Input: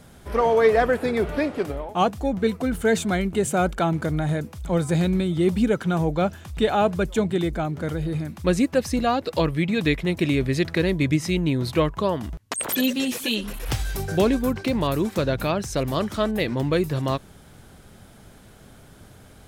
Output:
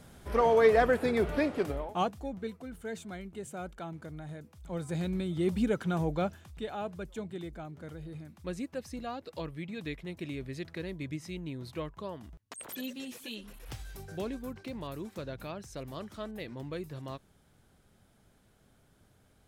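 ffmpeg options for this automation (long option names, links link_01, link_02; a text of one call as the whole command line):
ffmpeg -i in.wav -af "volume=6dB,afade=type=out:start_time=1.83:duration=0.27:silence=0.446684,afade=type=out:start_time=2.1:duration=0.53:silence=0.446684,afade=type=in:start_time=4.44:duration=1.18:silence=0.281838,afade=type=out:start_time=6.17:duration=0.43:silence=0.354813" out.wav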